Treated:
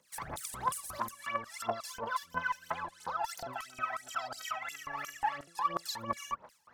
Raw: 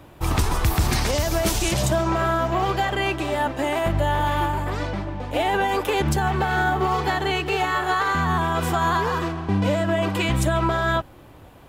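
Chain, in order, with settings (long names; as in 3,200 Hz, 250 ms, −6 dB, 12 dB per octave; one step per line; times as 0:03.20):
downward compressor, threshold −24 dBFS, peak gain reduction 8.5 dB
auto-filter band-pass square 1.6 Hz 540–5,300 Hz
phase shifter 1.7 Hz, delay 2.2 ms, feedback 79%
two-band tremolo in antiphase 2 Hz, depth 70%, crossover 500 Hz
wrong playback speed 45 rpm record played at 78 rpm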